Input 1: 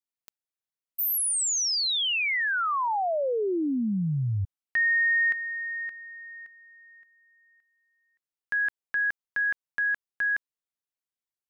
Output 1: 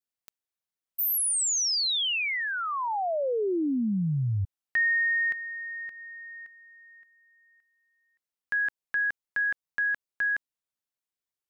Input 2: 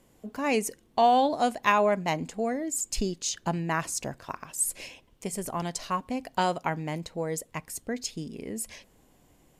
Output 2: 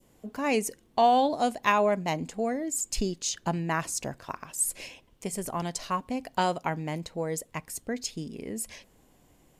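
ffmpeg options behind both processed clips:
-af "adynamicequalizer=threshold=0.0141:dfrequency=1500:dqfactor=0.83:tfrequency=1500:tqfactor=0.83:attack=5:release=100:ratio=0.375:range=2.5:mode=cutabove:tftype=bell"

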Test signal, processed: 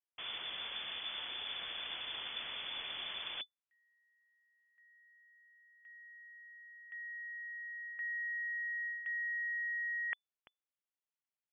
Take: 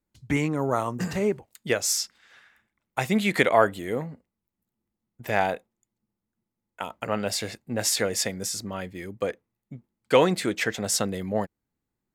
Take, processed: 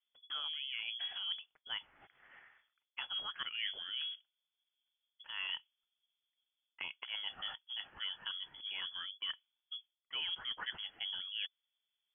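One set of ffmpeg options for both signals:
-af "areverse,acompressor=threshold=0.0224:ratio=8,areverse,lowpass=f=3000:t=q:w=0.5098,lowpass=f=3000:t=q:w=0.6013,lowpass=f=3000:t=q:w=0.9,lowpass=f=3000:t=q:w=2.563,afreqshift=-3500,volume=0.596"

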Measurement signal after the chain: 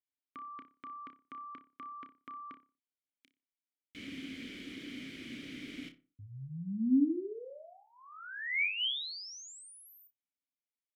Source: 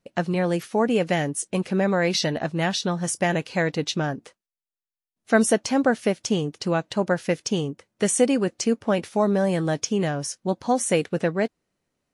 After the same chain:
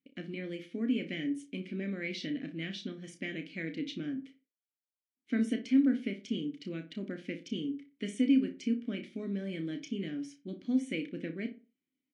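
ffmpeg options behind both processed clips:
-filter_complex "[0:a]asplit=3[s0][s1][s2];[s0]bandpass=f=270:t=q:w=8,volume=1[s3];[s1]bandpass=f=2290:t=q:w=8,volume=0.501[s4];[s2]bandpass=f=3010:t=q:w=8,volume=0.355[s5];[s3][s4][s5]amix=inputs=3:normalize=0,asplit=2[s6][s7];[s7]adelay=31,volume=0.376[s8];[s6][s8]amix=inputs=2:normalize=0,asplit=2[s9][s10];[s10]adelay=60,lowpass=f=1700:p=1,volume=0.282,asplit=2[s11][s12];[s12]adelay=60,lowpass=f=1700:p=1,volume=0.33,asplit=2[s13][s14];[s14]adelay=60,lowpass=f=1700:p=1,volume=0.33,asplit=2[s15][s16];[s16]adelay=60,lowpass=f=1700:p=1,volume=0.33[s17];[s11][s13][s15][s17]amix=inputs=4:normalize=0[s18];[s9][s18]amix=inputs=2:normalize=0"

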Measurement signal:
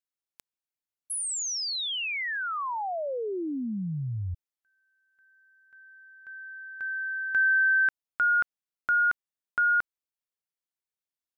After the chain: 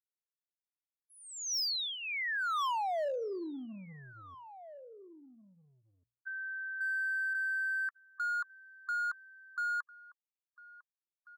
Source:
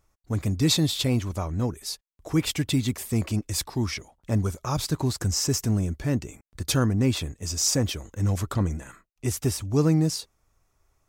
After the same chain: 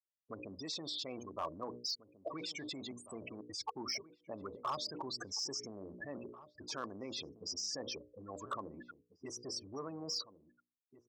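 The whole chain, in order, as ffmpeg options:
-filter_complex "[0:a]afftfilt=real='re*gte(hypot(re,im),0.0398)':imag='im*gte(hypot(re,im),0.0398)':win_size=1024:overlap=0.75,highshelf=f=3200:g=9,bandreject=f=60:t=h:w=6,bandreject=f=120:t=h:w=6,bandreject=f=180:t=h:w=6,bandreject=f=240:t=h:w=6,bandreject=f=300:t=h:w=6,bandreject=f=360:t=h:w=6,bandreject=f=420:t=h:w=6,bandreject=f=480:t=h:w=6,bandreject=f=540:t=h:w=6,bandreject=f=600:t=h:w=6,areverse,acompressor=threshold=0.0251:ratio=20:attack=2.9:release=22:knee=6:detection=rms,areverse,alimiter=level_in=2.82:limit=0.0631:level=0:latency=1:release=48,volume=0.355,highpass=370,equalizer=f=610:t=q:w=4:g=4,equalizer=f=1100:t=q:w=4:g=10,equalizer=f=2900:t=q:w=4:g=-9,equalizer=f=5300:t=q:w=4:g=7,lowpass=f=5800:w=0.5412,lowpass=f=5800:w=1.3066,volume=42.2,asoftclip=hard,volume=0.0237,asplit=2[s0][s1];[s1]adelay=1691,volume=0.178,highshelf=f=4000:g=-38[s2];[s0][s2]amix=inputs=2:normalize=0,volume=1.19"

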